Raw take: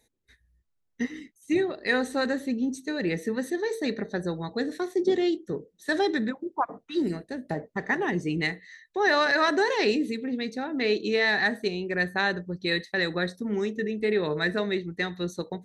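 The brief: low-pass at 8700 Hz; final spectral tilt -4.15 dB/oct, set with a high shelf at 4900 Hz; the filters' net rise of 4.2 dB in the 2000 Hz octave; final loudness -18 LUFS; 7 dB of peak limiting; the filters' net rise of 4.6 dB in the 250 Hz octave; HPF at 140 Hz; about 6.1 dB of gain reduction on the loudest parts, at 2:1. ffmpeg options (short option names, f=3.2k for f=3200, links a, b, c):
-af "highpass=140,lowpass=8.7k,equalizer=f=250:t=o:g=6.5,equalizer=f=2k:t=o:g=5.5,highshelf=f=4.9k:g=-5,acompressor=threshold=-27dB:ratio=2,volume=12dB,alimiter=limit=-7.5dB:level=0:latency=1"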